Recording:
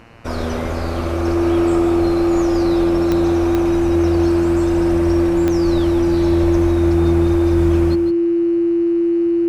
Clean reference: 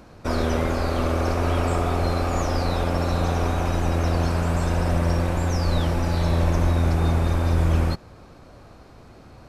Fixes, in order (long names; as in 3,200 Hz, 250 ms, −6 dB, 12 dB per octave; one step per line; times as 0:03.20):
click removal
hum removal 114.9 Hz, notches 26
notch filter 340 Hz, Q 30
echo removal 157 ms −9 dB